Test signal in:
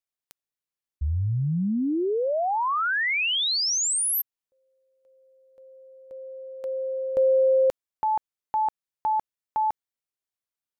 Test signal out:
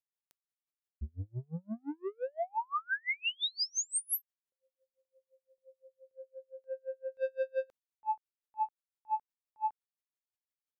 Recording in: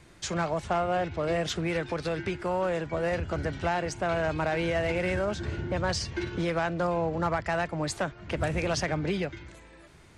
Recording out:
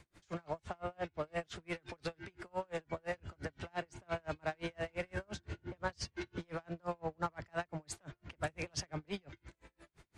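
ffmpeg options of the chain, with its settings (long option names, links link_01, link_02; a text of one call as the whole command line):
ffmpeg -i in.wav -filter_complex "[0:a]acrossover=split=680[link_01][link_02];[link_01]asoftclip=type=tanh:threshold=-28dB[link_03];[link_03][link_02]amix=inputs=2:normalize=0,aeval=exprs='val(0)*pow(10,-38*(0.5-0.5*cos(2*PI*5.8*n/s))/20)':channel_layout=same,volume=-4dB" out.wav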